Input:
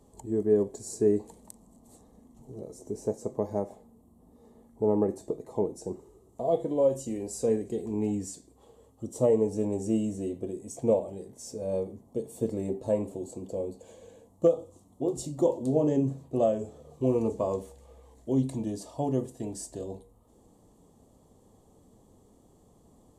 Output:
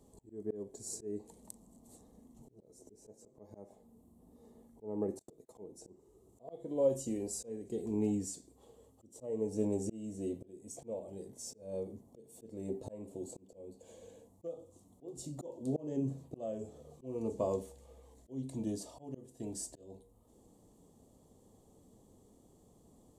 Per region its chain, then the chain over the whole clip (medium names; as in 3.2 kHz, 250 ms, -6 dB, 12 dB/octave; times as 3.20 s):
5.19–5.64 s: gate -47 dBFS, range -32 dB + treble shelf 4.7 kHz +9.5 dB
whole clip: peaking EQ 1.3 kHz -5.5 dB 2.1 oct; slow attack 436 ms; bass shelf 150 Hz -4 dB; trim -1.5 dB